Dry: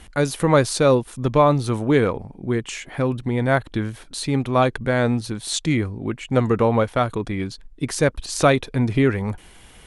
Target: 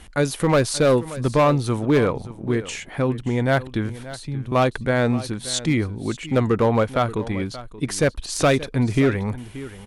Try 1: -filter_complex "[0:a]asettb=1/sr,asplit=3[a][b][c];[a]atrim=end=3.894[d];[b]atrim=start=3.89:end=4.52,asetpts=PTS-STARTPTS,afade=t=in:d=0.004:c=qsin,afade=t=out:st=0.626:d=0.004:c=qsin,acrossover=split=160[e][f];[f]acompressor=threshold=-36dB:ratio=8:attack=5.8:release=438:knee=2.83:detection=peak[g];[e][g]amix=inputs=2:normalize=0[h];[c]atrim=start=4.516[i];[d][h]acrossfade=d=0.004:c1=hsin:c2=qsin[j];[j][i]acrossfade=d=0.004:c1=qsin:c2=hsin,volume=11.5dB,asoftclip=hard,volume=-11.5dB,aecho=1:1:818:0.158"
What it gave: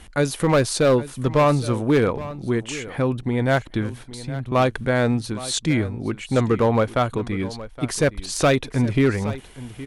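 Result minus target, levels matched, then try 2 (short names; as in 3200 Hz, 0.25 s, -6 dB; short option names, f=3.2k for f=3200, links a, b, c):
echo 0.239 s late
-filter_complex "[0:a]asettb=1/sr,asplit=3[a][b][c];[a]atrim=end=3.894[d];[b]atrim=start=3.89:end=4.52,asetpts=PTS-STARTPTS,afade=t=in:d=0.004:c=qsin,afade=t=out:st=0.626:d=0.004:c=qsin,acrossover=split=160[e][f];[f]acompressor=threshold=-36dB:ratio=8:attack=5.8:release=438:knee=2.83:detection=peak[g];[e][g]amix=inputs=2:normalize=0[h];[c]atrim=start=4.516[i];[d][h]acrossfade=d=0.004:c1=hsin:c2=qsin[j];[j][i]acrossfade=d=0.004:c1=qsin:c2=hsin,volume=11.5dB,asoftclip=hard,volume=-11.5dB,aecho=1:1:579:0.158"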